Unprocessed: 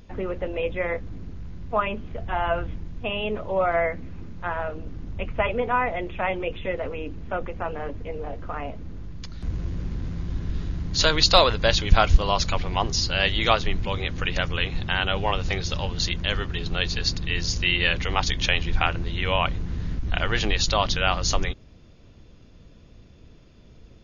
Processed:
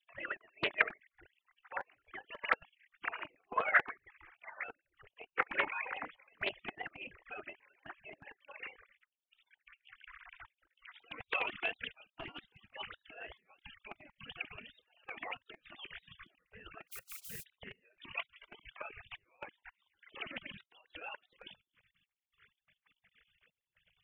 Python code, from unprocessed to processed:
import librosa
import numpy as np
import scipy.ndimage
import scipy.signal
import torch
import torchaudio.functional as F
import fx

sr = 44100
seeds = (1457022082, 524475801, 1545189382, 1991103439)

y = fx.sine_speech(x, sr)
y = scipy.signal.sosfilt(scipy.signal.butter(4, 2000.0, 'lowpass', fs=sr, output='sos'), y)
y = fx.over_compress(y, sr, threshold_db=-25.0, ratio=-0.5, at=(12.06, 12.47))
y = fx.dmg_noise_colour(y, sr, seeds[0], colour='violet', level_db=-55.0, at=(16.87, 17.42), fade=0.02)
y = fx.step_gate(y, sr, bpm=166, pattern='xxxx...xxx.x.xxx', floor_db=-24.0, edge_ms=4.5)
y = fx.spec_gate(y, sr, threshold_db=-30, keep='weak')
y = fx.doppler_dist(y, sr, depth_ms=0.59)
y = y * 10.0 ** (11.5 / 20.0)